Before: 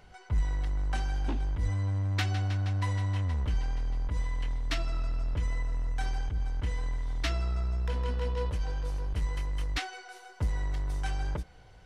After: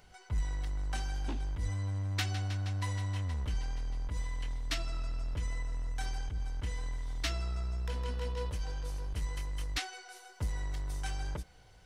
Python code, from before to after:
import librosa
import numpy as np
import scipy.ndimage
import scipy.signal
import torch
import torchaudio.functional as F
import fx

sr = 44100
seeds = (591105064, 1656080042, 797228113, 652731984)

y = fx.high_shelf(x, sr, hz=4200.0, db=10.5)
y = y * librosa.db_to_amplitude(-5.0)